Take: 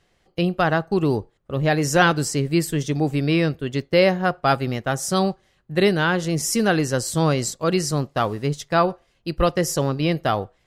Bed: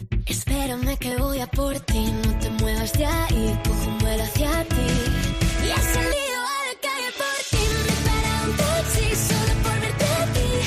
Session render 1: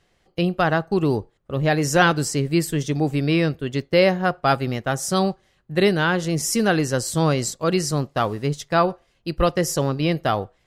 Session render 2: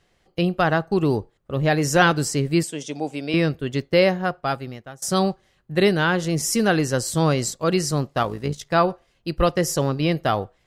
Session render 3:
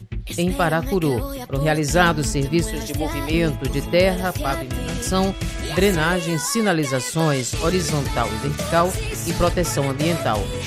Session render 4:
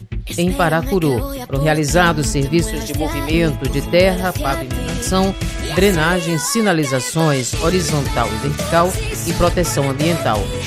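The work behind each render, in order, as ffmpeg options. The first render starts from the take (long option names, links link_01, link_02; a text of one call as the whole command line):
ffmpeg -i in.wav -af anull out.wav
ffmpeg -i in.wav -filter_complex "[0:a]asettb=1/sr,asplit=3[link_01][link_02][link_03];[link_01]atrim=end=2.634[link_04];[link_02]atrim=start=2.63:end=3.34,asetpts=PTS-STARTPTS,afade=type=in:duration=0.004:curve=qsin,afade=type=out:start_time=0.706:duration=0.004:curve=qsin,highpass=340,equalizer=frequency=380:width_type=q:width=4:gain=-8,equalizer=frequency=1200:width_type=q:width=4:gain=-9,equalizer=frequency=1800:width_type=q:width=4:gain=-9,equalizer=frequency=4200:width_type=q:width=4:gain=-5,lowpass=frequency=9900:width=0.5412,lowpass=frequency=9900:width=1.3066[link_05];[link_03]atrim=start=3.336[link_06];[link_04][link_05]acrossfade=duration=0.004:curve1=hsin:curve2=qsin[link_07];[link_07][link_06]acrossfade=duration=0.004:curve1=qsin:curve2=hsin,asettb=1/sr,asplit=3[link_08][link_09][link_10];[link_08]atrim=end=8.234[link_11];[link_09]atrim=start=8.23:end=8.66,asetpts=PTS-STARTPTS,afade=type=in:duration=0.004:curve=qsin,afade=type=out:start_time=0.426:duration=0.004:curve=qsin,tremolo=f=57:d=0.571[link_12];[link_10]atrim=start=8.656[link_13];[link_11][link_12]acrossfade=duration=0.004:curve1=hsin:curve2=qsin[link_14];[link_14][link_13]acrossfade=duration=0.004:curve1=qsin:curve2=hsin,asplit=2[link_15][link_16];[link_15]atrim=end=5.02,asetpts=PTS-STARTPTS,afade=type=out:start_time=3.94:duration=1.08:silence=0.0630957[link_17];[link_16]atrim=start=5.02,asetpts=PTS-STARTPTS,afade=type=in:duration=0.004:curve=hsin:silence=0.0630957[link_18];[link_17][link_18]concat=n=2:v=0:a=1" out.wav
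ffmpeg -i in.wav -i bed.wav -filter_complex "[1:a]volume=-5dB[link_01];[0:a][link_01]amix=inputs=2:normalize=0" out.wav
ffmpeg -i in.wav -af "volume=4dB,alimiter=limit=-1dB:level=0:latency=1" out.wav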